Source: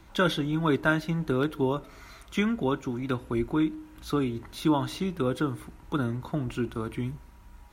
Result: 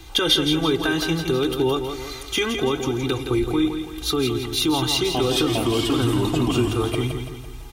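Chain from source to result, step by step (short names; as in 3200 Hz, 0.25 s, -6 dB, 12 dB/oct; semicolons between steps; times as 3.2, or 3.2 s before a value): comb 2.5 ms, depth 92%; 4.74–6.95 echoes that change speed 0.405 s, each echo -2 st, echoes 2; limiter -20 dBFS, peak gain reduction 9.5 dB; resonant high shelf 2400 Hz +6.5 dB, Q 1.5; feedback echo 0.167 s, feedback 47%, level -7 dB; gain +6.5 dB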